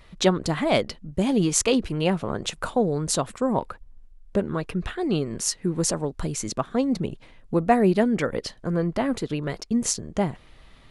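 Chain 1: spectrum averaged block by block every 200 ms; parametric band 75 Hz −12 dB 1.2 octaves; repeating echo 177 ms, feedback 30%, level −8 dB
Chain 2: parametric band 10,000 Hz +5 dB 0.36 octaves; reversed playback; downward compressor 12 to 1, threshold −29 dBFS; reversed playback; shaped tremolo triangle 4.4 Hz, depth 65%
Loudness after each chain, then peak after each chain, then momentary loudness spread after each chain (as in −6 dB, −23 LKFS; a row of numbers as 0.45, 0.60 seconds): −29.5, −37.5 LKFS; −10.5, −18.5 dBFS; 9, 5 LU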